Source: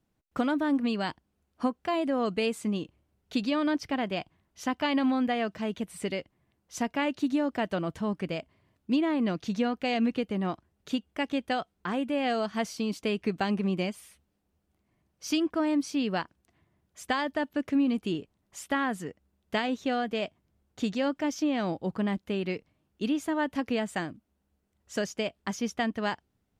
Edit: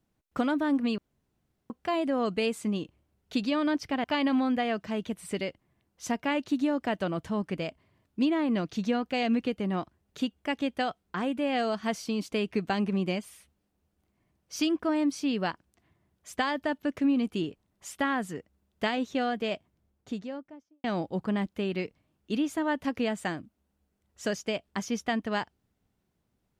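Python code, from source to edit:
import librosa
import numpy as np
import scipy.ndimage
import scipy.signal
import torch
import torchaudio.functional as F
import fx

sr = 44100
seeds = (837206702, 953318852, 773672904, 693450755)

y = fx.studio_fade_out(x, sr, start_s=20.25, length_s=1.3)
y = fx.edit(y, sr, fx.room_tone_fill(start_s=0.98, length_s=0.72),
    fx.cut(start_s=4.04, length_s=0.71), tone=tone)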